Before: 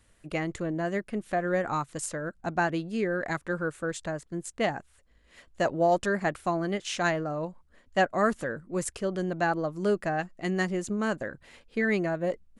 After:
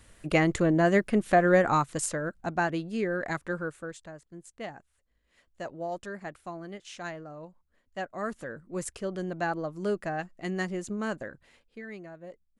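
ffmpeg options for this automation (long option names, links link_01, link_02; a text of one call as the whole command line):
ffmpeg -i in.wav -af "volume=15.5dB,afade=type=out:start_time=1.28:duration=1.25:silence=0.375837,afade=type=out:start_time=3.47:duration=0.55:silence=0.298538,afade=type=in:start_time=8.07:duration=0.75:silence=0.398107,afade=type=out:start_time=11.18:duration=0.64:silence=0.237137" out.wav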